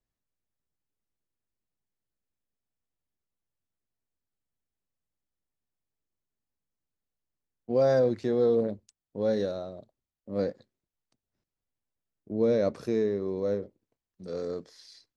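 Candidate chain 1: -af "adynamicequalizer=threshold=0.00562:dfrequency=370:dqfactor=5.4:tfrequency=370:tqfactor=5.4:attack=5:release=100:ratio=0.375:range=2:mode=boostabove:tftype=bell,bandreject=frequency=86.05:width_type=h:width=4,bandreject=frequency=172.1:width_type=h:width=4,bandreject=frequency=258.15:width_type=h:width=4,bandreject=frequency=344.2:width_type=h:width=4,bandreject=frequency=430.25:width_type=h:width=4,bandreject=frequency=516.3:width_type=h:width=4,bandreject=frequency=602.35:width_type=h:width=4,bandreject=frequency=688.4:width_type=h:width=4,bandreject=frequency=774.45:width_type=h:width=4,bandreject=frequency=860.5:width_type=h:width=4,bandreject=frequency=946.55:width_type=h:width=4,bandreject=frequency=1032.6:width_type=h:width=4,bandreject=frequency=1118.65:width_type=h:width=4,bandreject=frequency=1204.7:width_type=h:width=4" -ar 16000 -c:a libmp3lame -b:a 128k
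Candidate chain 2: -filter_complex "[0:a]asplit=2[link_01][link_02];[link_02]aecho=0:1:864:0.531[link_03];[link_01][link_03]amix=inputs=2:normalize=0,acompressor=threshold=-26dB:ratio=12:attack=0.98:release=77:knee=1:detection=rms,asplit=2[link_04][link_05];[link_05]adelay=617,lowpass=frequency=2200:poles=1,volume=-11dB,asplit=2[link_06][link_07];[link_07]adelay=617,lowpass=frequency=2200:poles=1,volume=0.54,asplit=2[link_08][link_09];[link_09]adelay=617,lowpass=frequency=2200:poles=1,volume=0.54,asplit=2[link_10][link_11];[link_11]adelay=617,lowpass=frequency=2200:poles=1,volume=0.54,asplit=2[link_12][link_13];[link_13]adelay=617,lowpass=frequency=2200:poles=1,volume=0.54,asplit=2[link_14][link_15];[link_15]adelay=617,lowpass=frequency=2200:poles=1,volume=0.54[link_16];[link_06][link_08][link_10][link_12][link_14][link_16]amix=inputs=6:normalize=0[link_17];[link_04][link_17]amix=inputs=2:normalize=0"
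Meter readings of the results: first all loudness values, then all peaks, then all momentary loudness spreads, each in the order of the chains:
−28.5, −34.0 LKFS; −14.0, −22.0 dBFS; 15, 12 LU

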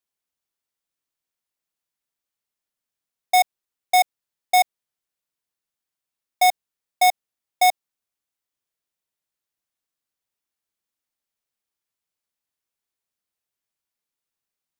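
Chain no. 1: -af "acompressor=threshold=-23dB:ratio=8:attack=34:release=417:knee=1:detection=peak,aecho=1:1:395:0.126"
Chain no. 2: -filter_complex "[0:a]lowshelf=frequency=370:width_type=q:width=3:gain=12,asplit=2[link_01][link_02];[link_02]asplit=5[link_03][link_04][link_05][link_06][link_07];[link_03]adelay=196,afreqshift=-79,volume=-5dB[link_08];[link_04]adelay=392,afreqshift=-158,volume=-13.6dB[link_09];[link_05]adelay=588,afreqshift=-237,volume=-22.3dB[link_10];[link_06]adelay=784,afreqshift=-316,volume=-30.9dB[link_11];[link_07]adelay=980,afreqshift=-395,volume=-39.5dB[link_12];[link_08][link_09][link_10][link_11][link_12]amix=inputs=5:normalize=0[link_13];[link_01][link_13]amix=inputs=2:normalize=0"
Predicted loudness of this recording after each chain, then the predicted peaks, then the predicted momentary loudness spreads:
−27.0, −23.0 LKFS; −13.5, −11.0 dBFS; 18, 11 LU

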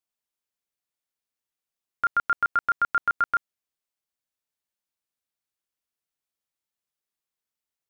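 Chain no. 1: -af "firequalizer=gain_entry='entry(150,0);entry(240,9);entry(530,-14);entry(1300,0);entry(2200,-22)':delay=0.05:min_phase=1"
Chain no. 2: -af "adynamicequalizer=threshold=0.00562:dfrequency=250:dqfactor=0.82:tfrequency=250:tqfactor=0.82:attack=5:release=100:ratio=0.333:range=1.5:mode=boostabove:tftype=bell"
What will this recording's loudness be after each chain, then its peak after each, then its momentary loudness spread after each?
−27.5, −25.0 LKFS; −18.0, −16.0 dBFS; 3, 3 LU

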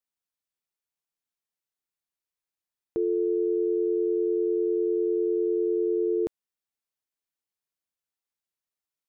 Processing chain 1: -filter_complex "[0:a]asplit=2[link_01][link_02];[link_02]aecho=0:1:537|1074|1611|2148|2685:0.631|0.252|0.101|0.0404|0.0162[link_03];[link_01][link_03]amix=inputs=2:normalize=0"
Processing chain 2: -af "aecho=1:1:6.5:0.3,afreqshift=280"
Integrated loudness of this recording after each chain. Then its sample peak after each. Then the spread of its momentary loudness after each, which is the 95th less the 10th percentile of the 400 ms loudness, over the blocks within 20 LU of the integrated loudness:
−23.5, −25.0 LKFS; −16.0, −18.0 dBFS; 14, 3 LU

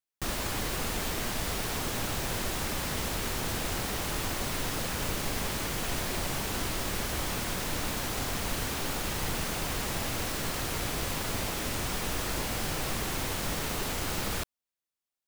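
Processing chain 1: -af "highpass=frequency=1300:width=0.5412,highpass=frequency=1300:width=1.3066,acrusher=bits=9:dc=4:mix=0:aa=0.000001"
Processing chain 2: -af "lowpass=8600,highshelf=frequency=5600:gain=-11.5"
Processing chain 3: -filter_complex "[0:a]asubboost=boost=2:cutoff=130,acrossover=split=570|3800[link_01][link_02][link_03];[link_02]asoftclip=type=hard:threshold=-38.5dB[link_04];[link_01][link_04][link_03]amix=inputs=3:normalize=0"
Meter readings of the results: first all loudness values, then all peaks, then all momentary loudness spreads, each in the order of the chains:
−33.5, −34.5, −31.5 LKFS; −22.0, −20.5, −14.5 dBFS; 0, 0, 1 LU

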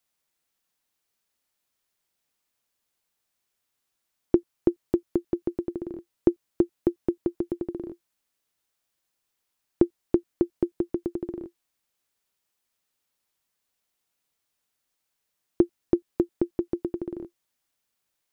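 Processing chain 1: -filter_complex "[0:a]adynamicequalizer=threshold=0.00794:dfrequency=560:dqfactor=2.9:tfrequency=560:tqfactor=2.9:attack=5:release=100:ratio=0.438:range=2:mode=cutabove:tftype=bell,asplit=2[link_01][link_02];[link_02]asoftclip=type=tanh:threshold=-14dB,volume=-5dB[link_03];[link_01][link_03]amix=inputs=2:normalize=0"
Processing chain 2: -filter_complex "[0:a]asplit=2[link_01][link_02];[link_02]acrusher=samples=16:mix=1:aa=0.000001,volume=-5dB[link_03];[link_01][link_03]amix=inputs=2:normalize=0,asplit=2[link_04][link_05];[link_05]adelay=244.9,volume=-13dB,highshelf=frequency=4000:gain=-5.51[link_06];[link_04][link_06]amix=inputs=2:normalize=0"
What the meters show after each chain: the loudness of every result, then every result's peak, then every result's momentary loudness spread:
−26.5, −25.5 LKFS; −4.5, −2.0 dBFS; 10, 10 LU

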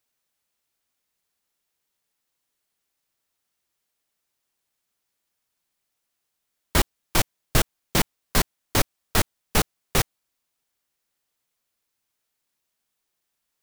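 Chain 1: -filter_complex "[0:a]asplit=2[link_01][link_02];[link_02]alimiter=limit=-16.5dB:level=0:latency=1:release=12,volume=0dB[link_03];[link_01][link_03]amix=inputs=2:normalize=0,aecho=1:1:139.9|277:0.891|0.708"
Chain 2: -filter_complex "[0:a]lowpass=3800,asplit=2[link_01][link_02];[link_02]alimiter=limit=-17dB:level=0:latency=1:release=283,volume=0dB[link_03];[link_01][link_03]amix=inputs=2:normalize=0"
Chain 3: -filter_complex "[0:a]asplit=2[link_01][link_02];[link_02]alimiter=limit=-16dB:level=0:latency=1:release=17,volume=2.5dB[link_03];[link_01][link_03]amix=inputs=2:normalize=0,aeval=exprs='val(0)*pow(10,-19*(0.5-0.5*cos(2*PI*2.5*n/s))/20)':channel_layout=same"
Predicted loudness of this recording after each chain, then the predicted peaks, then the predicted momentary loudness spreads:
−19.0, −24.5, −22.0 LKFS; −3.5, −4.0, −2.5 dBFS; 2, 1, 1 LU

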